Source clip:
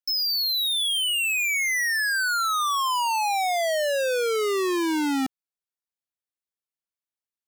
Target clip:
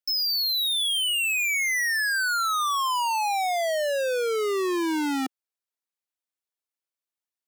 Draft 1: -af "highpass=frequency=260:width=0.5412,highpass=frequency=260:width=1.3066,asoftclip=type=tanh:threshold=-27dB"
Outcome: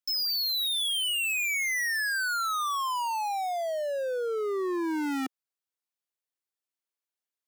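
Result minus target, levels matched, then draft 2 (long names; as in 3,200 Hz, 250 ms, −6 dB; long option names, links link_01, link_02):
soft clipping: distortion +12 dB
-af "highpass=frequency=260:width=0.5412,highpass=frequency=260:width=1.3066,asoftclip=type=tanh:threshold=-16.5dB"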